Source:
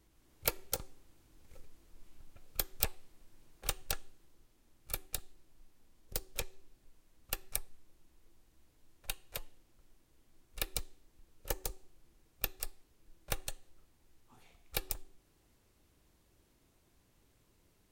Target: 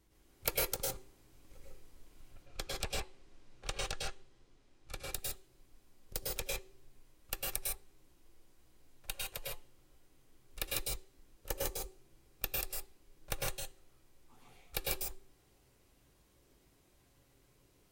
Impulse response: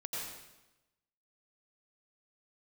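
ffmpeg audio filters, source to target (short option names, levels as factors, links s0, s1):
-filter_complex "[0:a]asettb=1/sr,asplit=3[s0][s1][s2];[s0]atrim=end=2.314[s3];[s1]atrim=start=2.31:end=5.05,asetpts=PTS-STARTPTS,afade=t=in:d=0.004:c=qsin,afade=t=out:st=2.736:d=0.004:c=qsin,lowpass=6200[s4];[s2]atrim=start=5.046[s5];[s3][s4]acrossfade=d=0.004:c1=hsin:c2=qsin[s6];[s6][s5]acrossfade=d=0.004:c1=qsin:c2=hsin[s7];[1:a]atrim=start_sample=2205,atrim=end_sample=6174,asetrate=36603,aresample=44100[s8];[s7][s8]afir=irnorm=-1:irlink=0,volume=1.19"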